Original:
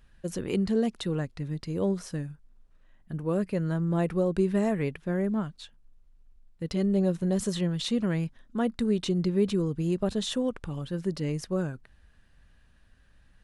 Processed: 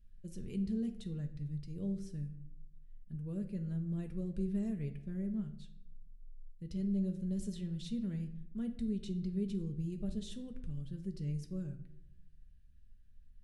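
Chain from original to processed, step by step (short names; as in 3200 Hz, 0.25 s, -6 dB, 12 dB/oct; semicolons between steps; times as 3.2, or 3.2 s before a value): passive tone stack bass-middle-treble 10-0-1; reverb RT60 0.75 s, pre-delay 5 ms, DRR 5 dB; gain +3.5 dB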